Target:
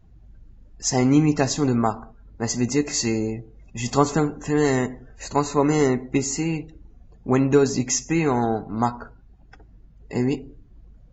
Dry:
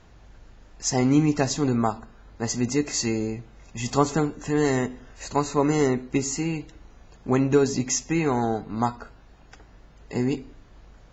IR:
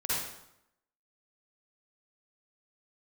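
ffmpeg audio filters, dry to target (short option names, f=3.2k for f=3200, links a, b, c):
-filter_complex "[0:a]asplit=2[a][b];[1:a]atrim=start_sample=2205,afade=t=out:st=0.28:d=0.01,atrim=end_sample=12789[c];[b][c]afir=irnorm=-1:irlink=0,volume=-27dB[d];[a][d]amix=inputs=2:normalize=0,afftdn=nr=19:nf=-47,volume=2dB"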